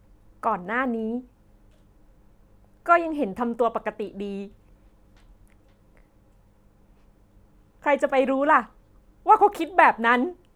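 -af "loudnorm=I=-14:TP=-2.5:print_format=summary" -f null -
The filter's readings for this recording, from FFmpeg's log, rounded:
Input Integrated:    -22.0 LUFS
Input True Peak:      -1.9 dBTP
Input LRA:            12.4 LU
Input Threshold:     -34.3 LUFS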